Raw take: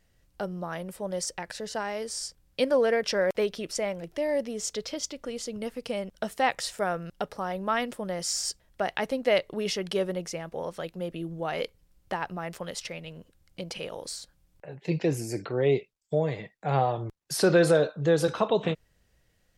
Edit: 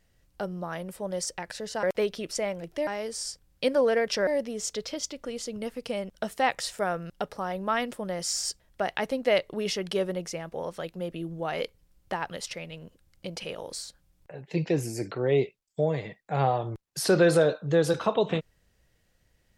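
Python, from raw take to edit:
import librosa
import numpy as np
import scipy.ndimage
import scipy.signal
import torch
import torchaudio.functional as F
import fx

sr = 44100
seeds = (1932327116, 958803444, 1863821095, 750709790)

y = fx.edit(x, sr, fx.move(start_s=3.23, length_s=1.04, to_s=1.83),
    fx.cut(start_s=12.31, length_s=0.34), tone=tone)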